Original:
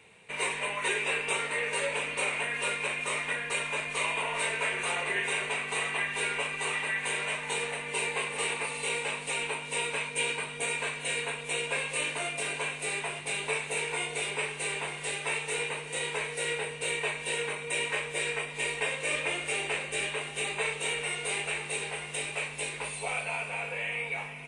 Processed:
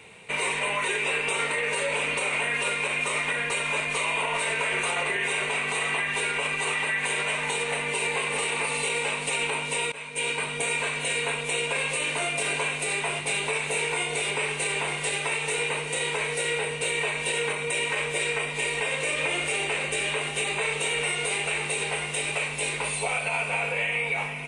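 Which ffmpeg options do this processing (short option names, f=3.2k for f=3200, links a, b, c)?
-filter_complex "[0:a]asplit=2[a][b];[a]atrim=end=9.92,asetpts=PTS-STARTPTS,afade=t=out:st=9.916:d=0.004:c=hsin:silence=0.0944061[c];[b]atrim=start=9.92,asetpts=PTS-STARTPTS,afade=t=in:d=0.65:silence=0.0944061[d];[c][d]concat=n=2:v=0:a=1,bandreject=f=1.7k:w=18,alimiter=level_in=2dB:limit=-24dB:level=0:latency=1:release=88,volume=-2dB,volume=8.5dB"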